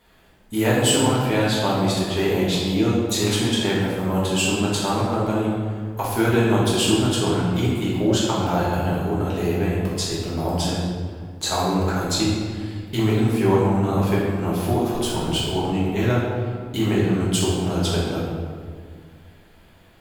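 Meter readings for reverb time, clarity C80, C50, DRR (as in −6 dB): 1.9 s, 1.5 dB, −0.5 dB, −7.0 dB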